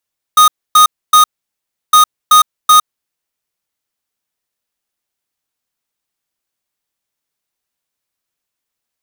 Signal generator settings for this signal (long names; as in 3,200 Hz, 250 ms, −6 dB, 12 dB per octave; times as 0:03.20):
beeps in groups square 1,240 Hz, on 0.11 s, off 0.27 s, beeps 3, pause 0.69 s, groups 2, −5.5 dBFS